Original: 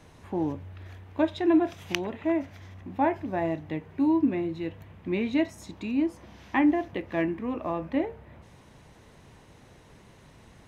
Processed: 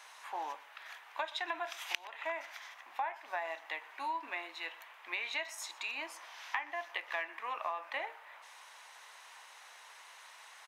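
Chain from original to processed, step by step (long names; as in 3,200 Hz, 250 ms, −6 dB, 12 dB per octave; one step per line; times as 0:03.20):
high-pass filter 890 Hz 24 dB per octave
downward compressor 12 to 1, threshold −39 dBFS, peak gain reduction 17.5 dB
on a send: single-tap delay 122 ms −21 dB
on the sum: level +6 dB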